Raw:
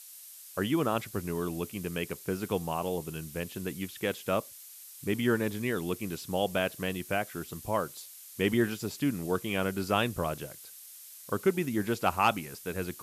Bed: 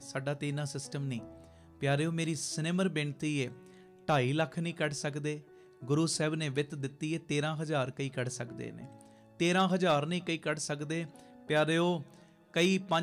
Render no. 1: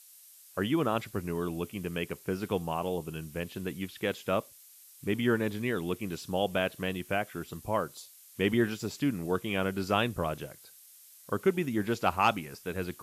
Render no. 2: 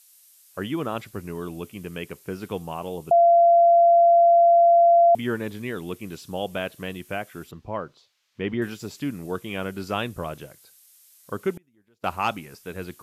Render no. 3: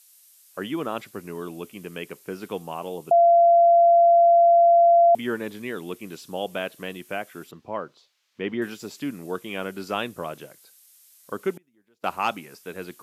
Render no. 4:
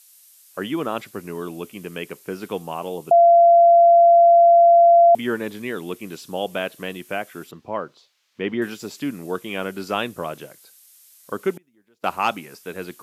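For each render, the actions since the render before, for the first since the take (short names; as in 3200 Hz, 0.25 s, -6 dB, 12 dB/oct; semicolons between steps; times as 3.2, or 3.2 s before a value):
noise print and reduce 6 dB
3.11–5.15 bleep 685 Hz -12 dBFS; 7.51–8.62 air absorption 220 m; 11.53–12.04 flipped gate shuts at -25 dBFS, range -33 dB
HPF 200 Hz 12 dB/oct
gain +3.5 dB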